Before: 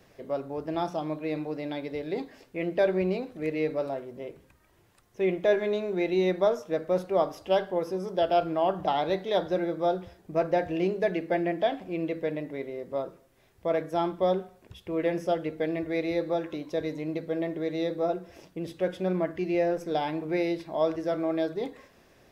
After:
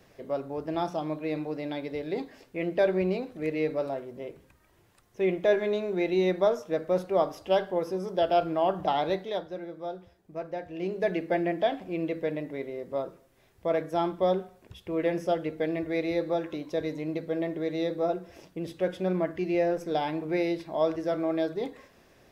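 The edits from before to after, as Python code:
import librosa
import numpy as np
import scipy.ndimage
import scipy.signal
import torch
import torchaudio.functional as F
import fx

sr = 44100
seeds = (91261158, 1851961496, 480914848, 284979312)

y = fx.edit(x, sr, fx.fade_down_up(start_s=9.08, length_s=2.02, db=-10.0, fade_s=0.38), tone=tone)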